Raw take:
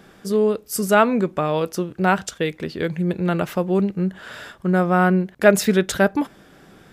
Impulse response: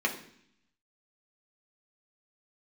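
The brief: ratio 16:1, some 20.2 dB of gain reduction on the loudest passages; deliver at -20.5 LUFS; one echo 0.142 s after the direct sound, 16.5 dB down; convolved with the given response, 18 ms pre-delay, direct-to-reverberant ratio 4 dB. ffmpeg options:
-filter_complex "[0:a]acompressor=threshold=-28dB:ratio=16,aecho=1:1:142:0.15,asplit=2[a][b];[1:a]atrim=start_sample=2205,adelay=18[c];[b][c]afir=irnorm=-1:irlink=0,volume=-13.5dB[d];[a][d]amix=inputs=2:normalize=0,volume=12dB"

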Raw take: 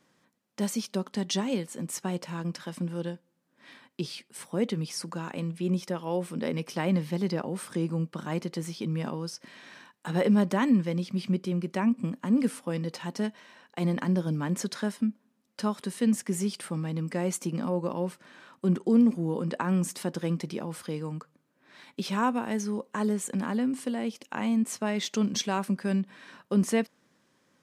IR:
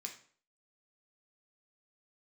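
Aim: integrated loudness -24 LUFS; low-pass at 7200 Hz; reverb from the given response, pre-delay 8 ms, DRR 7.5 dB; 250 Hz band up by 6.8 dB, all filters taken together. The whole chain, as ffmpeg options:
-filter_complex "[0:a]lowpass=7.2k,equalizer=f=250:t=o:g=8.5,asplit=2[a][b];[1:a]atrim=start_sample=2205,adelay=8[c];[b][c]afir=irnorm=-1:irlink=0,volume=-4.5dB[d];[a][d]amix=inputs=2:normalize=0"

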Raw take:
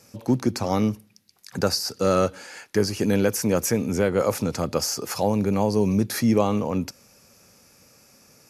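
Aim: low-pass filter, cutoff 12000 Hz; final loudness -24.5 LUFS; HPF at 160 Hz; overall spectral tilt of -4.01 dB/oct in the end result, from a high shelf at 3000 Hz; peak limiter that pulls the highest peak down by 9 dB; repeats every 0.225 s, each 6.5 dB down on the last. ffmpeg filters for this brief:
-af "highpass=160,lowpass=12k,highshelf=f=3k:g=4,alimiter=limit=-16dB:level=0:latency=1,aecho=1:1:225|450|675|900|1125|1350:0.473|0.222|0.105|0.0491|0.0231|0.0109,volume=1dB"

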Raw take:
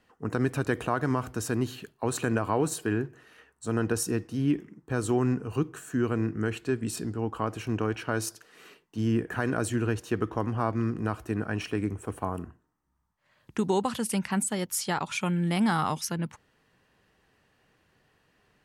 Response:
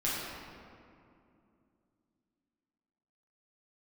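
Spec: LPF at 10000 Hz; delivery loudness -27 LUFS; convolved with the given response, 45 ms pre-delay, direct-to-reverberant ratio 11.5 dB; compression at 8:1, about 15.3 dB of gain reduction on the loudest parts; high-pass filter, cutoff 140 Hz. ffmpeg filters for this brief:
-filter_complex "[0:a]highpass=140,lowpass=10k,acompressor=threshold=-38dB:ratio=8,asplit=2[a][b];[1:a]atrim=start_sample=2205,adelay=45[c];[b][c]afir=irnorm=-1:irlink=0,volume=-19dB[d];[a][d]amix=inputs=2:normalize=0,volume=15.5dB"

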